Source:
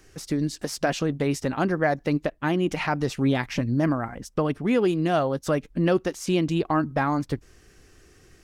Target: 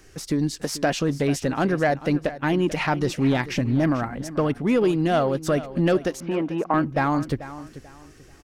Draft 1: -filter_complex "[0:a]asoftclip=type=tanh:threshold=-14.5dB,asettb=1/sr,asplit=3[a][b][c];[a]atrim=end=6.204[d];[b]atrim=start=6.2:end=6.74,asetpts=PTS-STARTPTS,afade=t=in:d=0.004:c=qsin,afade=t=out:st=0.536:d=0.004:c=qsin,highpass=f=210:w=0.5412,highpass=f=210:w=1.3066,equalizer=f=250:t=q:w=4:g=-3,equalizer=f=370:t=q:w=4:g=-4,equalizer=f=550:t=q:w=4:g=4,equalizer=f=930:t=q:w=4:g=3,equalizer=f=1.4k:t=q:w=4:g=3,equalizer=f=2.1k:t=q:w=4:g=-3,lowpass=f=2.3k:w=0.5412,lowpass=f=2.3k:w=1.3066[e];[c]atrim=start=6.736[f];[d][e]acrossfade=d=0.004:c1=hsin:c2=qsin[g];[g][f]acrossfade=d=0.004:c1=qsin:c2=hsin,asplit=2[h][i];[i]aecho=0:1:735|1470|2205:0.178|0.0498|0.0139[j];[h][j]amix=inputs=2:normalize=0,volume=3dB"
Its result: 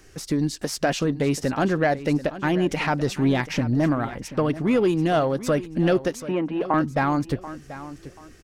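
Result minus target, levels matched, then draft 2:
echo 0.296 s late
-filter_complex "[0:a]asoftclip=type=tanh:threshold=-14.5dB,asettb=1/sr,asplit=3[a][b][c];[a]atrim=end=6.204[d];[b]atrim=start=6.2:end=6.74,asetpts=PTS-STARTPTS,afade=t=in:d=0.004:c=qsin,afade=t=out:st=0.536:d=0.004:c=qsin,highpass=f=210:w=0.5412,highpass=f=210:w=1.3066,equalizer=f=250:t=q:w=4:g=-3,equalizer=f=370:t=q:w=4:g=-4,equalizer=f=550:t=q:w=4:g=4,equalizer=f=930:t=q:w=4:g=3,equalizer=f=1.4k:t=q:w=4:g=3,equalizer=f=2.1k:t=q:w=4:g=-3,lowpass=f=2.3k:w=0.5412,lowpass=f=2.3k:w=1.3066[e];[c]atrim=start=6.736[f];[d][e]acrossfade=d=0.004:c1=hsin:c2=qsin[g];[g][f]acrossfade=d=0.004:c1=qsin:c2=hsin,asplit=2[h][i];[i]aecho=0:1:439|878|1317:0.178|0.0498|0.0139[j];[h][j]amix=inputs=2:normalize=0,volume=3dB"

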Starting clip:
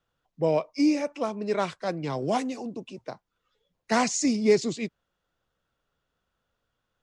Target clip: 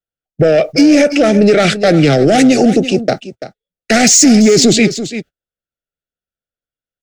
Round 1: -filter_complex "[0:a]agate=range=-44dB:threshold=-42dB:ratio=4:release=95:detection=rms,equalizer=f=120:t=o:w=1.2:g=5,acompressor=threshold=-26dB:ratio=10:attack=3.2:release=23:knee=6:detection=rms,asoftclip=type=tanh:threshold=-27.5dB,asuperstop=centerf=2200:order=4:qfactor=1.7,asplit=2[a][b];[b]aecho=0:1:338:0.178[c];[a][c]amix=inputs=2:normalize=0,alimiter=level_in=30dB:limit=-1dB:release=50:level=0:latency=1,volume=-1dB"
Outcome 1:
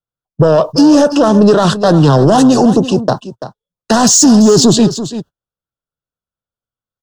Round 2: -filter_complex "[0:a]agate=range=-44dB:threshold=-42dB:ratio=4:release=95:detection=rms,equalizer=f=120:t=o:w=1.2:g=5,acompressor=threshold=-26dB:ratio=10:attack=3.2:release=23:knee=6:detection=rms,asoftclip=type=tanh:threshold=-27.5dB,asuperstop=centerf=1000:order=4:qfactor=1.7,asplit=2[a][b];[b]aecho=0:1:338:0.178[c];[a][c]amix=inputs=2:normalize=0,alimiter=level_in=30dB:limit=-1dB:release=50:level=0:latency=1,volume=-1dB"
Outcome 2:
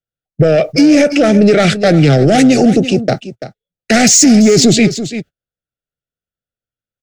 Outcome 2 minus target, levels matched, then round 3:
125 Hz band +3.5 dB
-filter_complex "[0:a]agate=range=-44dB:threshold=-42dB:ratio=4:release=95:detection=rms,equalizer=f=120:t=o:w=1.2:g=-2.5,acompressor=threshold=-26dB:ratio=10:attack=3.2:release=23:knee=6:detection=rms,asoftclip=type=tanh:threshold=-27.5dB,asuperstop=centerf=1000:order=4:qfactor=1.7,asplit=2[a][b];[b]aecho=0:1:338:0.178[c];[a][c]amix=inputs=2:normalize=0,alimiter=level_in=30dB:limit=-1dB:release=50:level=0:latency=1,volume=-1dB"

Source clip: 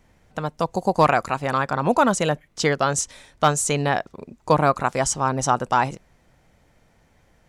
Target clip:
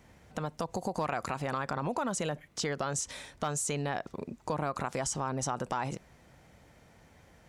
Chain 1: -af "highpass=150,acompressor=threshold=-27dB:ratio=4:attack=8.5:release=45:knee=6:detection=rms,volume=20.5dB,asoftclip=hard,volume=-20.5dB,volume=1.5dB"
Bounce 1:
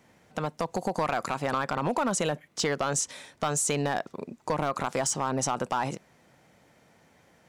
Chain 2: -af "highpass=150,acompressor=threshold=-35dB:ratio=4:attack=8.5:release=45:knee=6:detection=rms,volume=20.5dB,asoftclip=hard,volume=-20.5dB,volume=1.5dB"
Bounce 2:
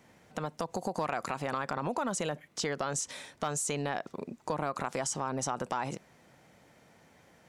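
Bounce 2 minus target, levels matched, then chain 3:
125 Hz band -3.0 dB
-af "highpass=51,acompressor=threshold=-35dB:ratio=4:attack=8.5:release=45:knee=6:detection=rms,volume=20.5dB,asoftclip=hard,volume=-20.5dB,volume=1.5dB"

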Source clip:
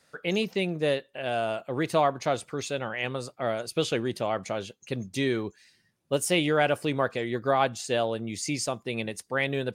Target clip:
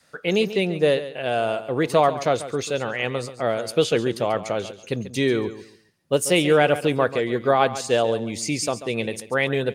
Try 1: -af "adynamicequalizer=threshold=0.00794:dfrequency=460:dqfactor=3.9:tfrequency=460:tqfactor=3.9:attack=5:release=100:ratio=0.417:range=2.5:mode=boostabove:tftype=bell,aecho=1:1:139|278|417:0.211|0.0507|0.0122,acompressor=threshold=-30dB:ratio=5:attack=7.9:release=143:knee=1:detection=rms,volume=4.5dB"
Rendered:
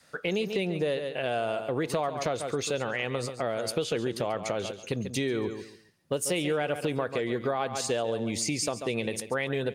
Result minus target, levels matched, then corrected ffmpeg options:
compressor: peak gain reduction +13 dB
-af "adynamicequalizer=threshold=0.00794:dfrequency=460:dqfactor=3.9:tfrequency=460:tqfactor=3.9:attack=5:release=100:ratio=0.417:range=2.5:mode=boostabove:tftype=bell,aecho=1:1:139|278|417:0.211|0.0507|0.0122,volume=4.5dB"

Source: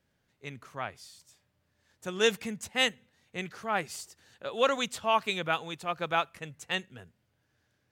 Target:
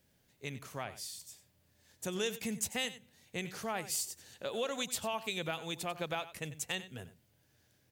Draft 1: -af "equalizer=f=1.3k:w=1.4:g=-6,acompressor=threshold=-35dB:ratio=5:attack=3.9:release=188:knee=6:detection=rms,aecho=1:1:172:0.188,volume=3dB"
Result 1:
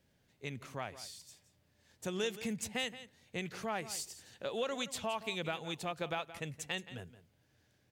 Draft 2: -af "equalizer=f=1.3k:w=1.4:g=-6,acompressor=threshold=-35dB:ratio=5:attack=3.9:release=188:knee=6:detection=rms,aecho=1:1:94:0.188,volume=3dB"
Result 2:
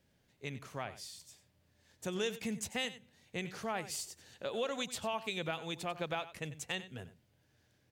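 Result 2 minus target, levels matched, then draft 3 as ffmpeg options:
8000 Hz band -4.0 dB
-af "equalizer=f=1.3k:w=1.4:g=-6,acompressor=threshold=-35dB:ratio=5:attack=3.9:release=188:knee=6:detection=rms,highshelf=f=8k:g=12,aecho=1:1:94:0.188,volume=3dB"

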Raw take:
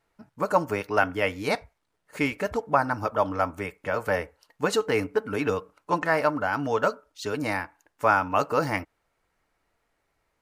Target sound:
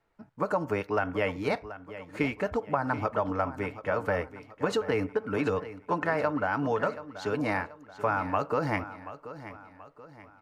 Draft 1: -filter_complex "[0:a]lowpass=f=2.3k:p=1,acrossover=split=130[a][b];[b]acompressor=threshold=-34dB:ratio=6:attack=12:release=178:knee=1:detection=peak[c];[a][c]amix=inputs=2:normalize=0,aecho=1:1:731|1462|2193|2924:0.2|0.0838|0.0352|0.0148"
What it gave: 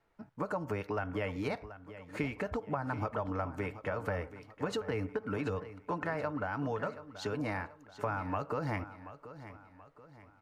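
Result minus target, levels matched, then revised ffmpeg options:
compressor: peak gain reduction +8.5 dB
-filter_complex "[0:a]lowpass=f=2.3k:p=1,acrossover=split=130[a][b];[b]acompressor=threshold=-24dB:ratio=6:attack=12:release=178:knee=1:detection=peak[c];[a][c]amix=inputs=2:normalize=0,aecho=1:1:731|1462|2193|2924:0.2|0.0838|0.0352|0.0148"

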